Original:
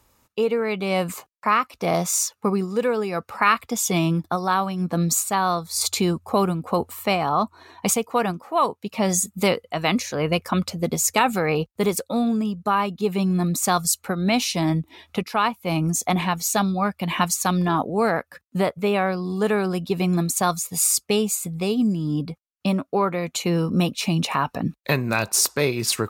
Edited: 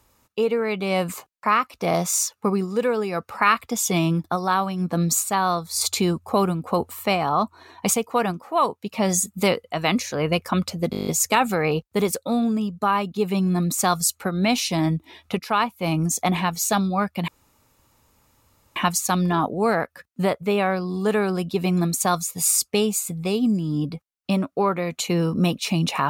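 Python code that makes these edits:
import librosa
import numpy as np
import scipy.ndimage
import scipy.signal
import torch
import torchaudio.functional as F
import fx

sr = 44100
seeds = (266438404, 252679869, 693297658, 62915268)

y = fx.edit(x, sr, fx.stutter(start_s=10.91, slice_s=0.02, count=9),
    fx.insert_room_tone(at_s=17.12, length_s=1.48), tone=tone)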